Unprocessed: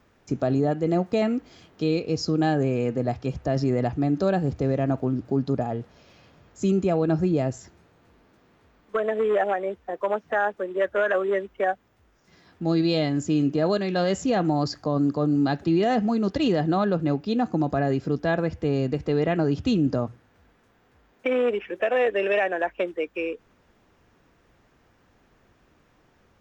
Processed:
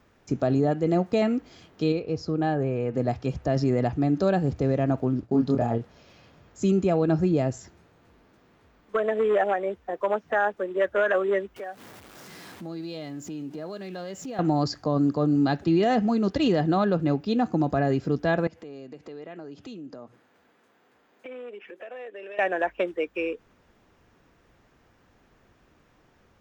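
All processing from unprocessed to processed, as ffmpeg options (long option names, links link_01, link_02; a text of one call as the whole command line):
ffmpeg -i in.wav -filter_complex "[0:a]asettb=1/sr,asplit=3[link_01][link_02][link_03];[link_01]atrim=end=1.924[link_04];[link_02]atrim=start=1.92:end=2.94,asetpts=PTS-STARTPTS,afade=type=in:duration=0.004:curve=qsin,afade=type=out:start_time=1.016:duration=0.004:curve=qsin,lowpass=frequency=1500:poles=1,equalizer=frequency=230:width_type=o:width=1.3:gain=-5.5[link_05];[link_03]atrim=start=2.936[link_06];[link_04][link_05]acrossfade=duration=0.004:curve1=hsin:curve2=qsin[link_07];[link_07][link_06]acrossfade=duration=0.004:curve1=qsin:curve2=hsin,asettb=1/sr,asplit=3[link_08][link_09][link_10];[link_08]atrim=end=5.204[link_11];[link_09]atrim=start=5.2:end=5.78,asetpts=PTS-STARTPTS,afade=type=in:duration=0.004:curve=qsin,afade=type=out:start_time=0.576:duration=0.004:curve=qsin,agate=range=-33dB:threshold=-38dB:ratio=3:release=100:detection=peak,asplit=2[link_12][link_13];[link_13]adelay=26,volume=-3dB[link_14];[link_12][link_14]amix=inputs=2:normalize=0,atrim=end_sample=25578[link_15];[link_10]atrim=start=5.776[link_16];[link_11][link_15]acrossfade=duration=0.004:curve1=hsin:curve2=qsin[link_17];[link_17][link_16]acrossfade=duration=0.004:curve1=qsin:curve2=hsin,asettb=1/sr,asplit=3[link_18][link_19][link_20];[link_18]atrim=end=11.564[link_21];[link_19]atrim=start=11.56:end=14.39,asetpts=PTS-STARTPTS,afade=type=in:duration=0.004:curve=qsin,afade=type=out:start_time=2.826:duration=0.004:curve=qsin,aeval=exprs='val(0)+0.5*0.00944*sgn(val(0))':channel_layout=same,highpass=140,acompressor=threshold=-39dB:ratio=2.5:attack=3.2:release=140:knee=1:detection=peak[link_22];[link_20]atrim=start=14.386[link_23];[link_21][link_22]acrossfade=duration=0.004:curve1=hsin:curve2=qsin[link_24];[link_24][link_23]acrossfade=duration=0.004:curve1=qsin:curve2=hsin,asettb=1/sr,asplit=3[link_25][link_26][link_27];[link_25]atrim=end=18.474[link_28];[link_26]atrim=start=18.47:end=22.39,asetpts=PTS-STARTPTS,afade=type=in:duration=0.004:curve=qsin,afade=type=out:start_time=3.916:duration=0.004:curve=qsin,highpass=240,acompressor=threshold=-43dB:ratio=3:attack=3.2:release=140:knee=1:detection=peak,bandreject=frequency=5600:width=18[link_29];[link_27]atrim=start=22.386[link_30];[link_28][link_29]acrossfade=duration=0.004:curve1=hsin:curve2=qsin[link_31];[link_31][link_30]acrossfade=duration=0.004:curve1=qsin:curve2=hsin" out.wav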